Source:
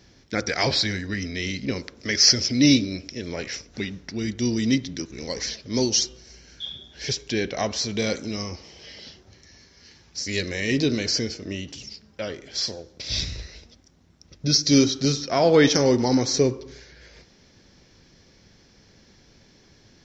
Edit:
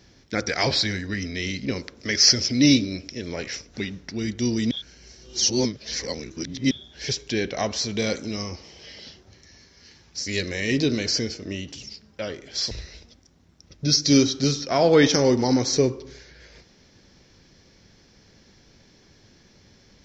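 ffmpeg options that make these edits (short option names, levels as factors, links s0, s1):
-filter_complex "[0:a]asplit=4[s0][s1][s2][s3];[s0]atrim=end=4.712[s4];[s1]atrim=start=4.708:end=6.712,asetpts=PTS-STARTPTS,areverse[s5];[s2]atrim=start=6.708:end=12.712[s6];[s3]atrim=start=13.318[s7];[s4][s5]acrossfade=d=0.004:c1=hsin:c2=hsin[s8];[s8][s6]acrossfade=d=0.004:c1=hsin:c2=hsin[s9];[s9][s7]acrossfade=d=0.004:c1=hsin:c2=hsin"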